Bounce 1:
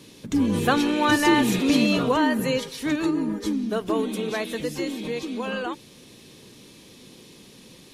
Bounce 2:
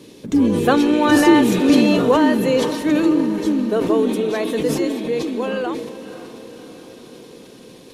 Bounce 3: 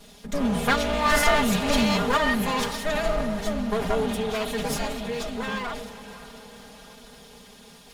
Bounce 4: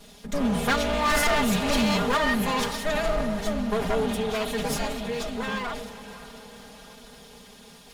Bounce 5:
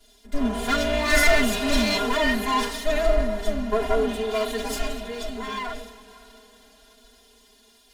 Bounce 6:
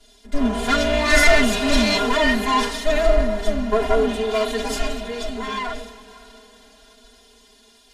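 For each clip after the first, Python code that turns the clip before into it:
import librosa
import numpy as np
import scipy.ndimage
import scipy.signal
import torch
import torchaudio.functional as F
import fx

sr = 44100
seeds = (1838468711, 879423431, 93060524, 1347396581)

y1 = fx.peak_eq(x, sr, hz=410.0, db=8.5, octaves=1.8)
y1 = fx.echo_diffused(y1, sr, ms=543, feedback_pct=58, wet_db=-14)
y1 = fx.sustainer(y1, sr, db_per_s=47.0)
y2 = fx.lower_of_two(y1, sr, delay_ms=4.3)
y2 = fx.peak_eq(y2, sr, hz=330.0, db=-12.0, octaves=1.4)
y2 = y2 + 0.6 * np.pad(y2, (int(4.9 * sr / 1000.0), 0))[:len(y2)]
y2 = y2 * librosa.db_to_amplitude(-2.0)
y3 = np.clip(y2, -10.0 ** (-18.0 / 20.0), 10.0 ** (-18.0 / 20.0))
y4 = y3 + 0.85 * np.pad(y3, (int(2.9 * sr / 1000.0), 0))[:len(y3)]
y4 = fx.hpss(y4, sr, part='percussive', gain_db=-11)
y4 = fx.band_widen(y4, sr, depth_pct=40)
y4 = y4 * librosa.db_to_amplitude(1.0)
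y5 = scipy.signal.sosfilt(scipy.signal.butter(2, 10000.0, 'lowpass', fs=sr, output='sos'), y4)
y5 = y5 * librosa.db_to_amplitude(4.0)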